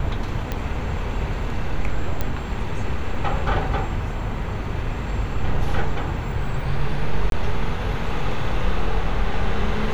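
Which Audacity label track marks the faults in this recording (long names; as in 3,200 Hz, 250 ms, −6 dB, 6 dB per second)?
0.520000	0.520000	click −12 dBFS
2.210000	2.210000	click −10 dBFS
7.300000	7.320000	drop-out 22 ms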